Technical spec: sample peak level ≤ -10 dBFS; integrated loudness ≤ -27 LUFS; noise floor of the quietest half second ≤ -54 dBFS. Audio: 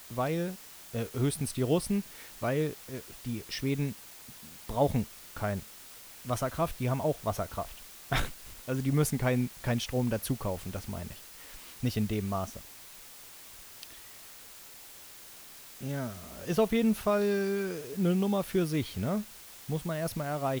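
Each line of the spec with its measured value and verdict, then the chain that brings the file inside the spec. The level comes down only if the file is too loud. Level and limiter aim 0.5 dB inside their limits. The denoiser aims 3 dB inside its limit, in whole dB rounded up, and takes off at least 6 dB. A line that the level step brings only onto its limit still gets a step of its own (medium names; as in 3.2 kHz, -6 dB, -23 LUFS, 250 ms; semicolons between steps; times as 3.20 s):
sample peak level -13.0 dBFS: pass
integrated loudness -32.0 LUFS: pass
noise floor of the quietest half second -50 dBFS: fail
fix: noise reduction 7 dB, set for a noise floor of -50 dBFS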